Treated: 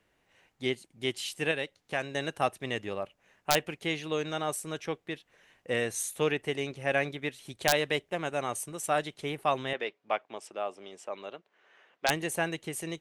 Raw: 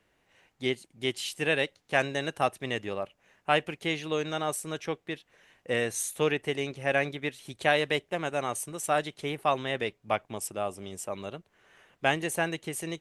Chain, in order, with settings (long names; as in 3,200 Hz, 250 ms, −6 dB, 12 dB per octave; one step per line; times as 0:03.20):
0:01.51–0:02.15: downward compressor 1.5 to 1, threshold −35 dBFS, peak gain reduction 6 dB
wrap-around overflow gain 10 dB
0:09.73–0:12.09: band-pass filter 370–4,400 Hz
level −1.5 dB